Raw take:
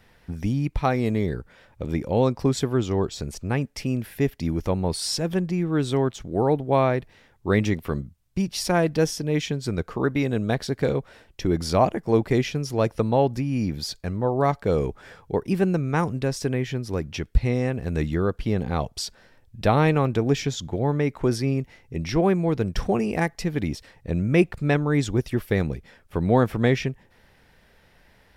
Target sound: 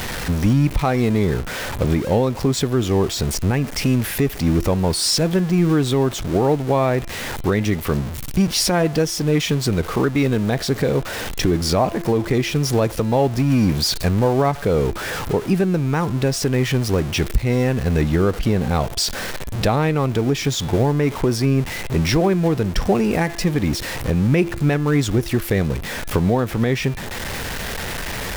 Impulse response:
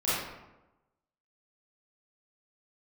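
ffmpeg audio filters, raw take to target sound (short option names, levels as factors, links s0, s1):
-af "aeval=exprs='val(0)+0.5*0.0299*sgn(val(0))':c=same,bandreject=f=340.8:t=h:w=4,bandreject=f=681.6:t=h:w=4,bandreject=f=1022.4:t=h:w=4,bandreject=f=1363.2:t=h:w=4,bandreject=f=1704:t=h:w=4,bandreject=f=2044.8:t=h:w=4,bandreject=f=2385.6:t=h:w=4,bandreject=f=2726.4:t=h:w=4,bandreject=f=3067.2:t=h:w=4,bandreject=f=3408:t=h:w=4,bandreject=f=3748.8:t=h:w=4,bandreject=f=4089.6:t=h:w=4,alimiter=limit=0.141:level=0:latency=1:release=427,volume=2.82"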